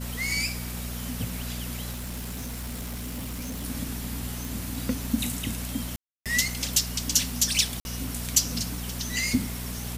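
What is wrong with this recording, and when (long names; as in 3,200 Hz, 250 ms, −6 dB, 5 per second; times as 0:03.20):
surface crackle 14 per second −38 dBFS
mains hum 60 Hz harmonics 4 −35 dBFS
0:01.91–0:03.65: clipping −30.5 dBFS
0:04.45: click
0:05.96–0:06.26: drop-out 297 ms
0:07.80–0:07.85: drop-out 51 ms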